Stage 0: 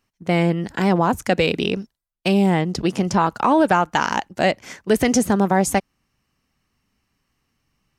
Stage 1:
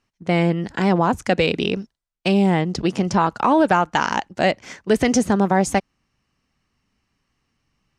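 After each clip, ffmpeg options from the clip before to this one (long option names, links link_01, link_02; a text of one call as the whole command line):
ffmpeg -i in.wav -af "lowpass=7700" out.wav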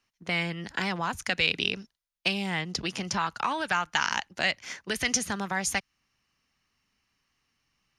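ffmpeg -i in.wav -filter_complex "[0:a]tiltshelf=frequency=930:gain=-5.5,bandreject=frequency=7900:width=6.2,acrossover=split=150|1200|5000[link_01][link_02][link_03][link_04];[link_02]acompressor=threshold=-30dB:ratio=6[link_05];[link_01][link_05][link_03][link_04]amix=inputs=4:normalize=0,volume=-4.5dB" out.wav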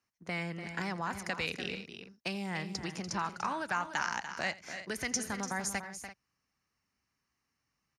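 ffmpeg -i in.wav -af "highpass=44,equalizer=frequency=3200:width_type=o:width=0.79:gain=-9.5,aecho=1:1:84|292|338:0.106|0.316|0.178,volume=-5.5dB" out.wav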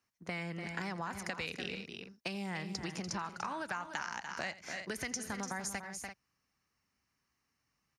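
ffmpeg -i in.wav -af "acompressor=threshold=-36dB:ratio=6,volume=1dB" out.wav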